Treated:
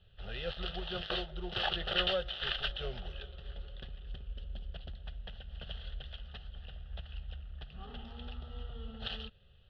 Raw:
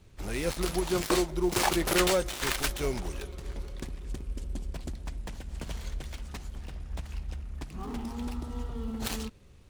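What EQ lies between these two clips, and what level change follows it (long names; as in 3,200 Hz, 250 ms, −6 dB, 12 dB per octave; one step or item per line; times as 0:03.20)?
transistor ladder low-pass 3,400 Hz, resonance 65%
phaser with its sweep stopped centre 1,500 Hz, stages 8
+5.0 dB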